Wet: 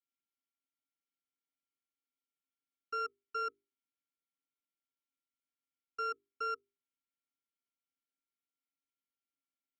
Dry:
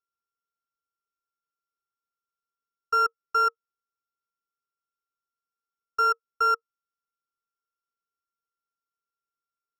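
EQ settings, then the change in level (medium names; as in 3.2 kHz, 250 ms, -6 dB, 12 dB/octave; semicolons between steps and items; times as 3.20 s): vowel filter i; hum notches 50/100/150/200/250/300/350/400 Hz; +10.0 dB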